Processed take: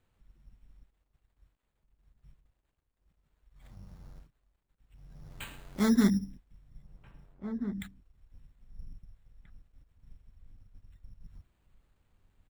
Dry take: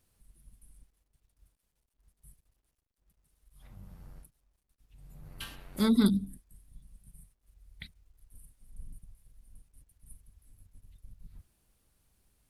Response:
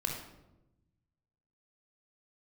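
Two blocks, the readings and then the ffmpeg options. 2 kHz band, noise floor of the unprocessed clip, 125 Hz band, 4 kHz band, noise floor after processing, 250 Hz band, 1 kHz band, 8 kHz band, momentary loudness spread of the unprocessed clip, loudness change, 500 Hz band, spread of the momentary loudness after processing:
+3.0 dB, −81 dBFS, +0.5 dB, −4.0 dB, −80 dBFS, +0.5 dB, +1.0 dB, +2.0 dB, 20 LU, −1.5 dB, 0.0 dB, 21 LU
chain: -filter_complex "[0:a]aresample=16000,aresample=44100,acrusher=samples=8:mix=1:aa=0.000001,asplit=2[link_01][link_02];[link_02]adelay=1633,volume=-11dB,highshelf=frequency=4000:gain=-36.7[link_03];[link_01][link_03]amix=inputs=2:normalize=0"

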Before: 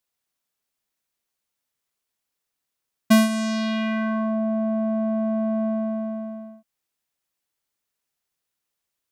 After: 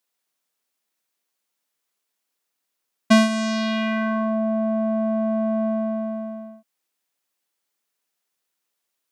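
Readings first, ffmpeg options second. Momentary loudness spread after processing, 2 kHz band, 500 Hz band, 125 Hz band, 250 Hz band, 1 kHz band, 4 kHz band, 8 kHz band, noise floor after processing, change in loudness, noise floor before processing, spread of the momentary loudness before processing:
11 LU, +3.0 dB, +3.0 dB, can't be measured, +0.5 dB, +3.0 dB, +3.0 dB, −0.5 dB, −80 dBFS, +1.0 dB, −83 dBFS, 11 LU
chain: -filter_complex "[0:a]highpass=210,acrossover=split=8200[link_01][link_02];[link_02]acompressor=threshold=-57dB:ratio=4:attack=1:release=60[link_03];[link_01][link_03]amix=inputs=2:normalize=0,volume=3dB"

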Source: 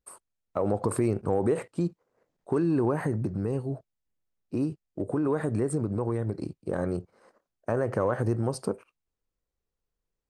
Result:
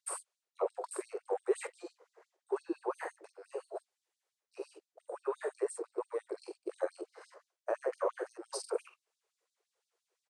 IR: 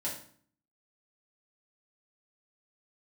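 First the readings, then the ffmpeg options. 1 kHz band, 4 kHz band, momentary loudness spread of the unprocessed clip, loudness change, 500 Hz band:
−7.0 dB, can't be measured, 10 LU, −10.0 dB, −7.0 dB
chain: -af "lowpass=frequency=10000:width=0.5412,lowpass=frequency=10000:width=1.3066,lowshelf=frequency=410:gain=10.5,areverse,acompressor=threshold=-31dB:ratio=8,areverse,aecho=1:1:24|45:0.299|0.631,afftfilt=real='re*gte(b*sr/1024,330*pow(3600/330,0.5+0.5*sin(2*PI*5.8*pts/sr)))':imag='im*gte(b*sr/1024,330*pow(3600/330,0.5+0.5*sin(2*PI*5.8*pts/sr)))':win_size=1024:overlap=0.75,volume=7dB"

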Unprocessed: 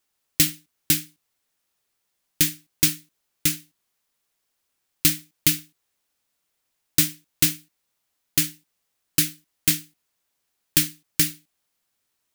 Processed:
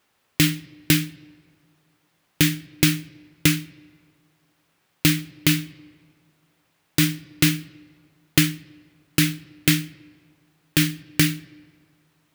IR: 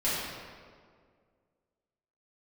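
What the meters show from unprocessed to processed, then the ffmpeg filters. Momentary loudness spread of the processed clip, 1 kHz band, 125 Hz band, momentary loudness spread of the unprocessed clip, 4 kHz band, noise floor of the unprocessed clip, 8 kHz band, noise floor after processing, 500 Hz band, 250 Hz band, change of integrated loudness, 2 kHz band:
11 LU, +8.0 dB, +9.5 dB, 6 LU, +2.0 dB, −77 dBFS, −3.5 dB, −69 dBFS, +8.5 dB, +9.0 dB, +0.5 dB, +6.5 dB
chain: -filter_complex "[0:a]highpass=71,bass=frequency=250:gain=2,treble=frequency=4000:gain=-12,acompressor=threshold=-27dB:ratio=2,asplit=2[link_01][link_02];[1:a]atrim=start_sample=2205,lowpass=7600[link_03];[link_02][link_03]afir=irnorm=-1:irlink=0,volume=-33dB[link_04];[link_01][link_04]amix=inputs=2:normalize=0,alimiter=level_in=15.5dB:limit=-1dB:release=50:level=0:latency=1,volume=-1dB"

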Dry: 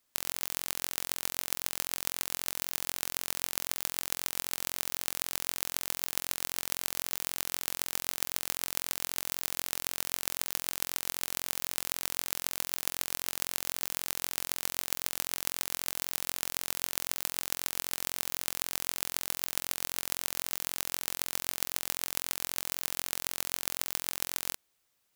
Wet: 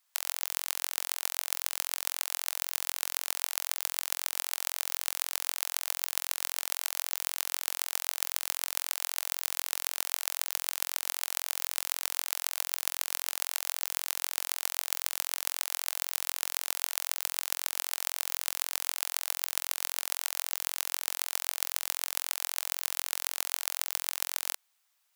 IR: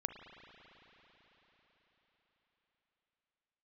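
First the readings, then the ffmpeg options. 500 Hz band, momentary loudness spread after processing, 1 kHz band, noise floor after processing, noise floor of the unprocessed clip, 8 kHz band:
−7.0 dB, 0 LU, +1.0 dB, −73 dBFS, −75 dBFS, +1.5 dB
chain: -af "highpass=frequency=710:width=0.5412,highpass=frequency=710:width=1.3066,volume=1.5dB"

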